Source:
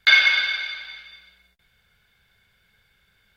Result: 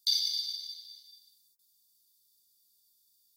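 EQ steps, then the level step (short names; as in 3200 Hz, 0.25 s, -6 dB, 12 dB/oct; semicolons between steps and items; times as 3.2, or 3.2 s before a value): elliptic band-stop 400–4700 Hz, stop band 40 dB; differentiator; +6.0 dB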